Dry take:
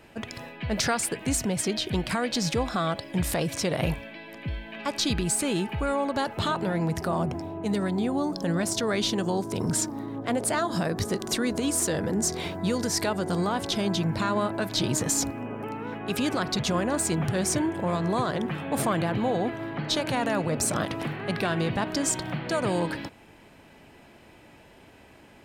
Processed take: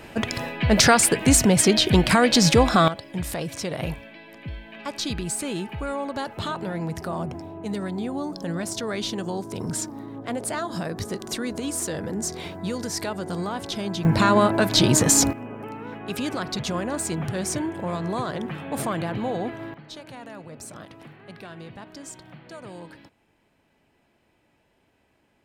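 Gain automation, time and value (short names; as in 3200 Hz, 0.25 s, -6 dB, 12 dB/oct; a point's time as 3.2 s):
+10 dB
from 2.88 s -2.5 dB
from 14.05 s +8.5 dB
from 15.33 s -1.5 dB
from 19.74 s -14 dB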